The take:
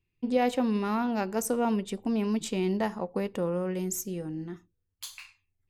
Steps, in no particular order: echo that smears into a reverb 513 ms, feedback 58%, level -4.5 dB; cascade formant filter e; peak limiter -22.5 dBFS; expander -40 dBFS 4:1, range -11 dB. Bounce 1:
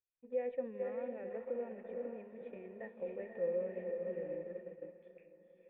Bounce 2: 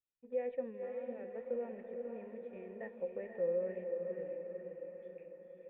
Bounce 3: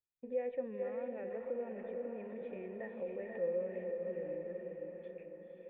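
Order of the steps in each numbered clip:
echo that smears into a reverb > peak limiter > cascade formant filter > expander; peak limiter > cascade formant filter > expander > echo that smears into a reverb; expander > echo that smears into a reverb > peak limiter > cascade formant filter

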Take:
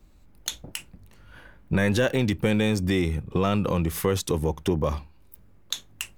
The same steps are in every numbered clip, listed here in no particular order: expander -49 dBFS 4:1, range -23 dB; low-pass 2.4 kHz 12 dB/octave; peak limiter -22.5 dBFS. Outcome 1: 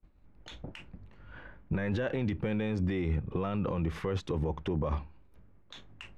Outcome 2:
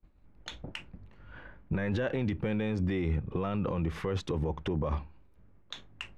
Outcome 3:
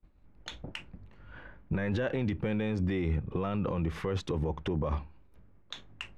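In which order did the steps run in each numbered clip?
expander > peak limiter > low-pass; low-pass > expander > peak limiter; expander > low-pass > peak limiter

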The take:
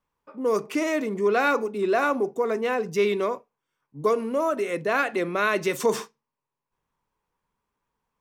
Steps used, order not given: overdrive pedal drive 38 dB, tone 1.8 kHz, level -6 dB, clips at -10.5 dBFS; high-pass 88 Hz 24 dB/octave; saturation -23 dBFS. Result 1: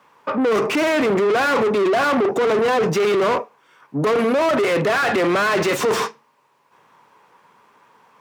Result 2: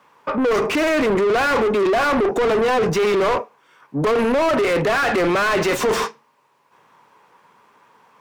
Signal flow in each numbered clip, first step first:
saturation > overdrive pedal > high-pass; high-pass > saturation > overdrive pedal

